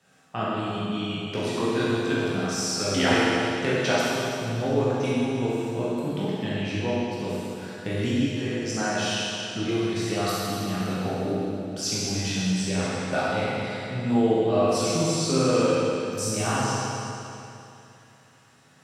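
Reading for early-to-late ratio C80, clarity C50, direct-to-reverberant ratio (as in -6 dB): -2.0 dB, -4.5 dB, -9.5 dB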